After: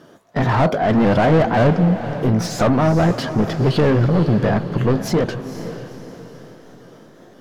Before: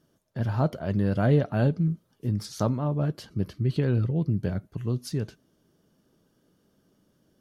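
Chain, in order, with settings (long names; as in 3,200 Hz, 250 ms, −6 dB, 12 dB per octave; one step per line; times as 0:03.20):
pitch shifter swept by a sawtooth +2.5 semitones, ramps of 524 ms
mid-hump overdrive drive 30 dB, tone 1,200 Hz, clips at −12.5 dBFS
feedback delay with all-pass diffusion 493 ms, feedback 44%, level −11 dB
level +5.5 dB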